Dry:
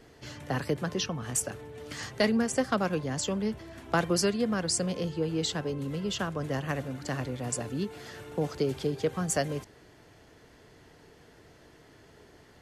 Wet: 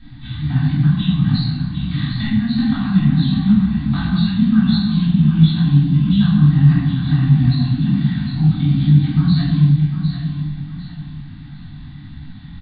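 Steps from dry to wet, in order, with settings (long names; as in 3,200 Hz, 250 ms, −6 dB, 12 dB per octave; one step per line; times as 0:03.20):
hearing-aid frequency compression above 3,300 Hz 4 to 1
elliptic band-stop filter 280–770 Hz, stop band 40 dB
mains-hum notches 60/120 Hz
comb filter 2.6 ms, depth 38%
downward compressor 2.5 to 1, threshold −38 dBFS, peak gain reduction 11 dB
low shelf with overshoot 280 Hz +13 dB, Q 3
on a send: repeating echo 753 ms, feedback 32%, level −8 dB
on the sum: rectangular room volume 850 cubic metres, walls mixed, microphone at 2.8 metres
micro pitch shift up and down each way 51 cents
level +5.5 dB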